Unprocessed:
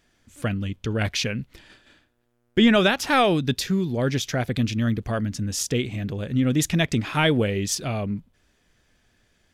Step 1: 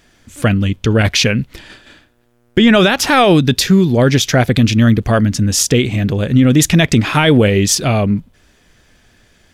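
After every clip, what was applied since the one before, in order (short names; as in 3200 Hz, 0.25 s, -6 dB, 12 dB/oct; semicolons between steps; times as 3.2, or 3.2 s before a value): maximiser +14 dB; gain -1 dB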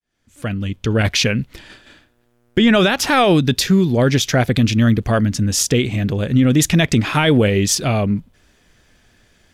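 opening faded in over 1.05 s; gain -3.5 dB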